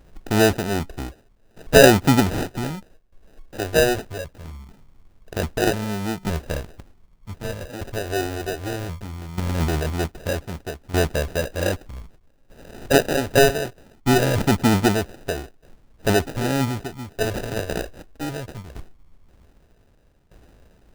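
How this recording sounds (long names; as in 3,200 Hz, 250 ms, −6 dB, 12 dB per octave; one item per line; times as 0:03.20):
tremolo saw down 0.64 Hz, depth 80%
phaser sweep stages 2, 0.21 Hz, lowest notch 170–5,000 Hz
aliases and images of a low sample rate 1,100 Hz, jitter 0%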